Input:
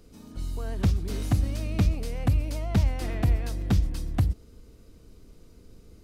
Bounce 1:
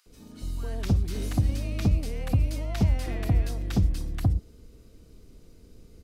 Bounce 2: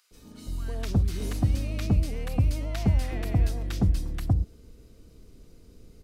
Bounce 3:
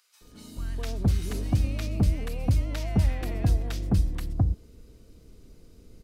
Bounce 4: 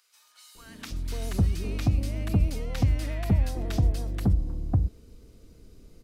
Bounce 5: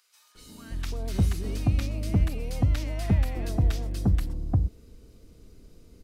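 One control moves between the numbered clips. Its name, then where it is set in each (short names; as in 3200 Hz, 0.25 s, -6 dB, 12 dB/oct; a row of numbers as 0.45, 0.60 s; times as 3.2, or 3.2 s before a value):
bands offset in time, time: 60, 110, 210, 550, 350 ms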